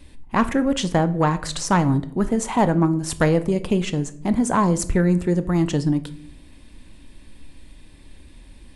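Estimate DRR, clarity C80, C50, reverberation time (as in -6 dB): 12.0 dB, 20.5 dB, 16.5 dB, 0.60 s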